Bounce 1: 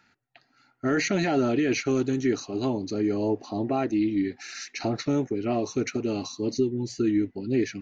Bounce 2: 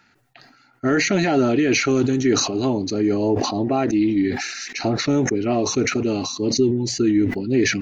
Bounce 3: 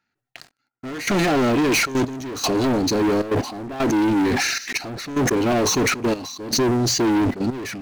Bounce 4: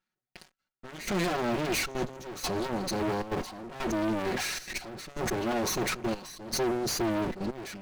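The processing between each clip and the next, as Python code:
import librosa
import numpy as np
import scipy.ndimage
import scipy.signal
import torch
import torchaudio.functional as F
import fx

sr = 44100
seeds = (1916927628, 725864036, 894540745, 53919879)

y1 = fx.sustainer(x, sr, db_per_s=47.0)
y1 = y1 * 10.0 ** (5.5 / 20.0)
y2 = fx.leveller(y1, sr, passes=5)
y2 = fx.step_gate(y2, sr, bpm=154, pattern='xxxxx.x....xxx', floor_db=-12.0, edge_ms=4.5)
y2 = y2 * 10.0 ** (-9.0 / 20.0)
y3 = fx.lower_of_two(y2, sr, delay_ms=5.4)
y3 = y3 * 10.0 ** (-8.5 / 20.0)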